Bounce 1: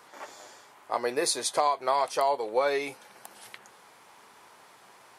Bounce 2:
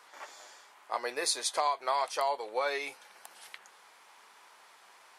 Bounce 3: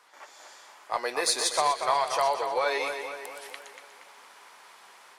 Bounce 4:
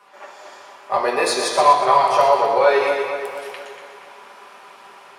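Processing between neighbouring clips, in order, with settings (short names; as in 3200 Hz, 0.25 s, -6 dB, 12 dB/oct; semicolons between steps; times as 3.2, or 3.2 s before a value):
HPF 1100 Hz 6 dB/oct; high shelf 8900 Hz -6.5 dB
AGC gain up to 7 dB; in parallel at -9.5 dB: one-sided clip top -22 dBFS; on the sum: split-band echo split 2800 Hz, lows 0.235 s, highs 0.122 s, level -7 dB; gain -5 dB
reverb RT60 1.1 s, pre-delay 3 ms, DRR -3 dB; gain -1 dB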